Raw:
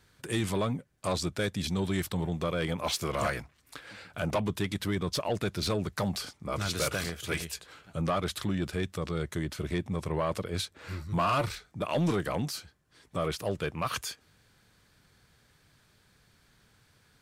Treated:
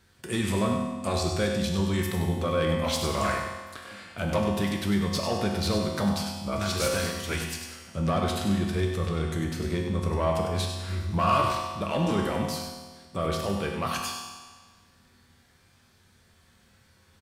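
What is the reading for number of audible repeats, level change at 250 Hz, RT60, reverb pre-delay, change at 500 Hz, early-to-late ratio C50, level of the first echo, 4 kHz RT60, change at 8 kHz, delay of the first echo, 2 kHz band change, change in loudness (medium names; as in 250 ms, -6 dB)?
1, +5.0 dB, 1.5 s, 4 ms, +4.0 dB, 1.5 dB, -8.0 dB, 1.4 s, +3.0 dB, 98 ms, +2.5 dB, +4.0 dB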